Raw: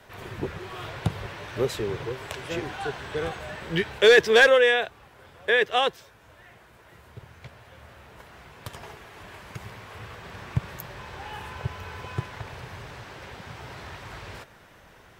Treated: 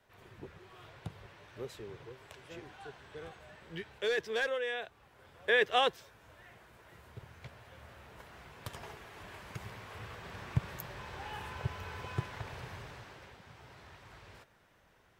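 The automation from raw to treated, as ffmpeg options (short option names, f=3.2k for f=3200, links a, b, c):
-af "volume=-5dB,afade=t=in:st=4.66:d=1.03:silence=0.251189,afade=t=out:st=12.67:d=0.72:silence=0.354813"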